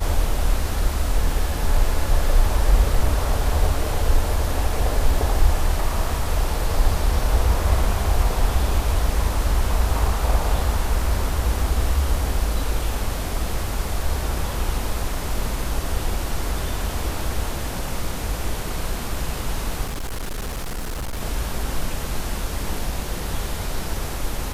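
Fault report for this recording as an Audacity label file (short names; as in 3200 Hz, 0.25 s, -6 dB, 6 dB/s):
19.840000	21.210000	clipped -24 dBFS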